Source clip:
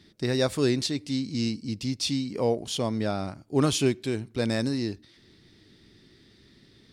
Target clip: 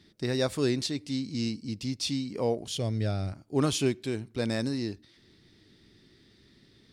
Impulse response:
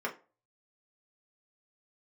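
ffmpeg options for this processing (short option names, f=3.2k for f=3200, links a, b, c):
-filter_complex "[0:a]asettb=1/sr,asplit=3[a][b][c];[a]atrim=end=2.684[d];[b]atrim=start=2.68:end=3.33,asetpts=PTS-STARTPTS,afade=t=in:d=0.004:c=qsin,afade=t=out:st=0.646:d=0.004:c=qsin,equalizer=f=100:t=o:w=0.67:g=10,equalizer=f=250:t=o:w=0.67:g=-4,equalizer=f=1k:t=o:w=0.67:g=-12[e];[c]atrim=start=3.326[f];[d][e]acrossfade=d=0.004:c1=hsin:c2=qsin[g];[g][f]acrossfade=d=0.004:c1=qsin:c2=hsin,volume=-3dB"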